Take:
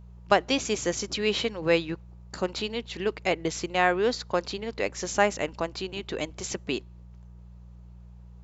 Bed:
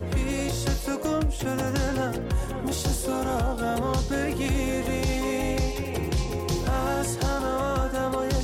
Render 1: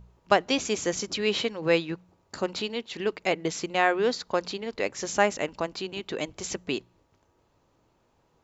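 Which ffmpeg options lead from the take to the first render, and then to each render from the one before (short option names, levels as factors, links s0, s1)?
-af "bandreject=f=60:t=h:w=4,bandreject=f=120:t=h:w=4,bandreject=f=180:t=h:w=4"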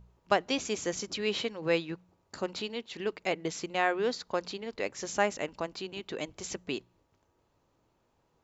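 -af "volume=0.562"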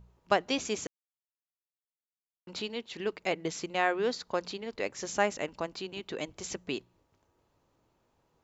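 -filter_complex "[0:a]asplit=3[s0][s1][s2];[s0]atrim=end=0.87,asetpts=PTS-STARTPTS,afade=t=out:st=0.866:d=0.004:c=hsin[s3];[s1]atrim=start=0.87:end=2.47,asetpts=PTS-STARTPTS,volume=0[s4];[s2]atrim=start=2.47,asetpts=PTS-STARTPTS,afade=t=in:d=0.004:c=hsin[s5];[s3][s4][s5]concat=n=3:v=0:a=1"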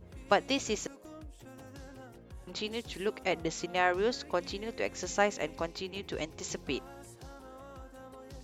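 -filter_complex "[1:a]volume=0.0708[s0];[0:a][s0]amix=inputs=2:normalize=0"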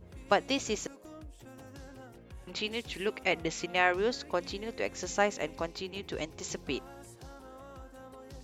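-filter_complex "[0:a]asettb=1/sr,asplit=3[s0][s1][s2];[s0]atrim=end=2.174[s3];[s1]atrim=start=2.17:end=3.96,asetpts=PTS-STARTPTS,afade=t=in:d=0.004:c=qsin,afade=t=out:st=1.786:d=0.004:c=qsin,equalizer=f=2400:t=o:w=0.8:g=6[s4];[s2]atrim=start=3.956[s5];[s3][s4]acrossfade=d=0.004:c1=hsin:c2=qsin[s6];[s6][s5]acrossfade=d=0.004:c1=qsin:c2=hsin"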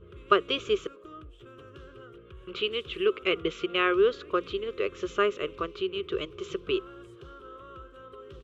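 -af "firequalizer=gain_entry='entry(130,0);entry(260,-8);entry(380,12);entry(810,-19);entry(1200,13);entry(1800,-5);entry(3100,8);entry(4600,-13);entry(6800,-14);entry(13000,-21)':delay=0.05:min_phase=1"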